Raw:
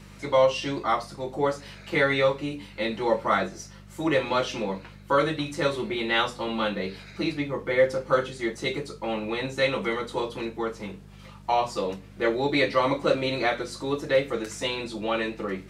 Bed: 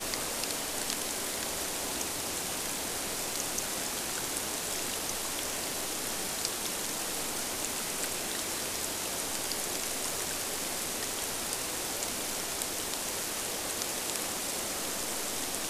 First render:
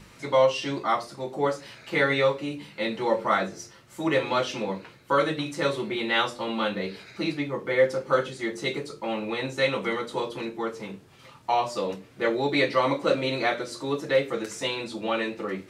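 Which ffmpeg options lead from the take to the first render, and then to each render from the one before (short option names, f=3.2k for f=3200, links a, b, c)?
-af "bandreject=f=50:t=h:w=4,bandreject=f=100:t=h:w=4,bandreject=f=150:t=h:w=4,bandreject=f=200:t=h:w=4,bandreject=f=250:t=h:w=4,bandreject=f=300:t=h:w=4,bandreject=f=350:t=h:w=4,bandreject=f=400:t=h:w=4,bandreject=f=450:t=h:w=4,bandreject=f=500:t=h:w=4,bandreject=f=550:t=h:w=4,bandreject=f=600:t=h:w=4"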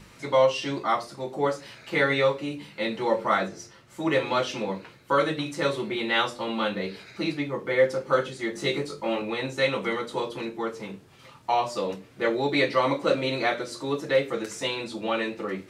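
-filter_complex "[0:a]asettb=1/sr,asplit=3[a][b][c];[a]atrim=end=3.484[d];[b]atrim=start=3.48:end=4.08,asetpts=PTS-STARTPTS,afade=t=in:d=0.004:c=qsin,afade=t=out:st=0.596:d=0.004:c=qsin,highshelf=f=8.3k:g=-6.5[e];[c]atrim=start=4.076[f];[d][e]acrossfade=d=0.004:c1=hsin:c2=qsin[g];[g][f]acrossfade=d=0.004:c1=qsin:c2=hsin,asettb=1/sr,asplit=3[h][i][j];[h]atrim=end=8.534[k];[i]atrim=start=8.53:end=9.22,asetpts=PTS-STARTPTS,afade=t=in:d=0.004:c=qsin,afade=t=out:st=0.686:d=0.004:c=qsin,asplit=2[l][m];[m]adelay=21,volume=-2dB[n];[l][n]amix=inputs=2:normalize=0,atrim=end_sample=30429[o];[j]atrim=start=9.216[p];[k][o]acrossfade=d=0.004:c1=hsin:c2=qsin[q];[q][p]acrossfade=d=0.004:c1=qsin:c2=hsin"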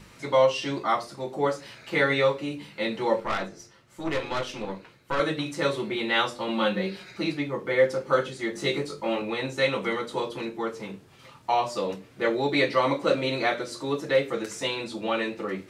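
-filter_complex "[0:a]asettb=1/sr,asplit=3[a][b][c];[a]atrim=end=3.204[d];[b]atrim=start=3.2:end=5.2,asetpts=PTS-STARTPTS,afade=t=in:d=0.004:c=qsin,afade=t=out:st=1.996:d=0.004:c=qsin,aeval=exprs='(tanh(12.6*val(0)+0.75)-tanh(0.75))/12.6':c=same[e];[c]atrim=start=5.196[f];[d][e]acrossfade=d=0.004:c1=hsin:c2=qsin[g];[g][f]acrossfade=d=0.004:c1=qsin:c2=hsin,asettb=1/sr,asplit=3[h][i][j];[h]atrim=end=6.484[k];[i]atrim=start=6.48:end=7.14,asetpts=PTS-STARTPTS,afade=t=in:d=0.004:c=qsin,afade=t=out:st=0.656:d=0.004:c=qsin,aecho=1:1:5.5:0.66,atrim=end_sample=29106[l];[j]atrim=start=7.136[m];[k][l]acrossfade=d=0.004:c1=hsin:c2=qsin[n];[n][m]acrossfade=d=0.004:c1=qsin:c2=hsin"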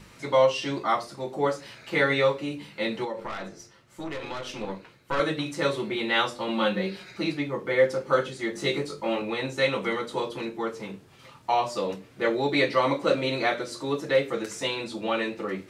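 -filter_complex "[0:a]asettb=1/sr,asplit=3[a][b][c];[a]atrim=end=3.044[d];[b]atrim=start=3.04:end=4.46,asetpts=PTS-STARTPTS,afade=t=in:d=0.004:c=qsin,afade=t=out:st=1.416:d=0.004:c=qsin,acompressor=threshold=-29dB:ratio=6:attack=3.2:release=140:knee=1:detection=peak[e];[c]atrim=start=4.456[f];[d][e]acrossfade=d=0.004:c1=hsin:c2=qsin[g];[g][f]acrossfade=d=0.004:c1=qsin:c2=hsin"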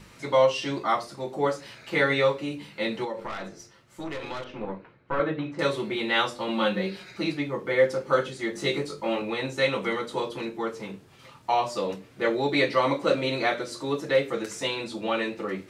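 -filter_complex "[0:a]asettb=1/sr,asplit=3[a][b][c];[a]atrim=end=4.444[d];[b]atrim=start=4.44:end=5.59,asetpts=PTS-STARTPTS,afade=t=in:d=0.004:c=qsin,afade=t=out:st=1.146:d=0.004:c=qsin,lowpass=1.8k[e];[c]atrim=start=5.586[f];[d][e]acrossfade=d=0.004:c1=hsin:c2=qsin[g];[g][f]acrossfade=d=0.004:c1=qsin:c2=hsin"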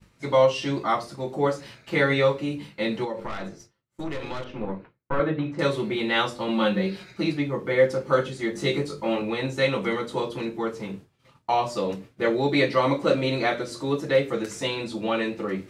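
-af "agate=range=-33dB:threshold=-41dB:ratio=3:detection=peak,lowshelf=f=270:g=7.5"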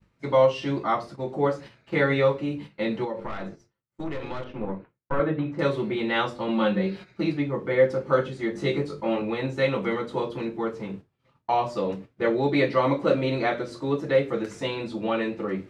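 -af "agate=range=-7dB:threshold=-39dB:ratio=16:detection=peak,lowpass=f=2.3k:p=1"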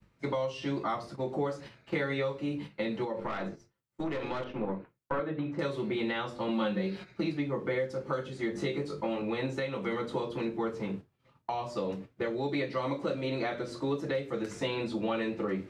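-filter_complex "[0:a]acrossover=split=150|3900[a][b][c];[a]acompressor=threshold=-45dB:ratio=4[d];[b]acompressor=threshold=-29dB:ratio=4[e];[c]acompressor=threshold=-47dB:ratio=4[f];[d][e][f]amix=inputs=3:normalize=0,alimiter=limit=-21dB:level=0:latency=1:release=493"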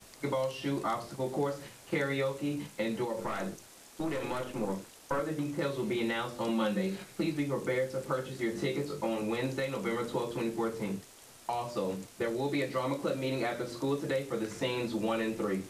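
-filter_complex "[1:a]volume=-20dB[a];[0:a][a]amix=inputs=2:normalize=0"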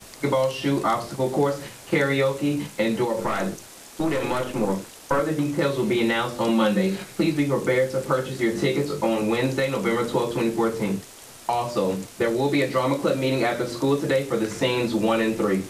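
-af "volume=10dB"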